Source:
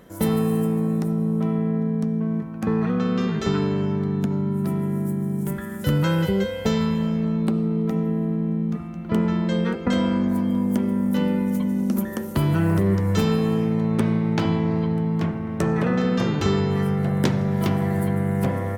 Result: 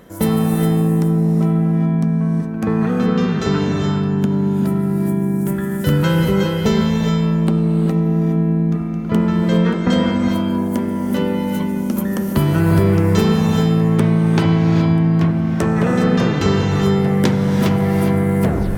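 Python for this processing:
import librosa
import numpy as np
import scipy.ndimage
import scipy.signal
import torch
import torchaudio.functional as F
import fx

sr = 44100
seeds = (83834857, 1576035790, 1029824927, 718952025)

y = fx.tape_stop_end(x, sr, length_s=0.34)
y = fx.rev_gated(y, sr, seeds[0], gate_ms=440, shape='rising', drr_db=3.0)
y = F.gain(torch.from_numpy(y), 4.5).numpy()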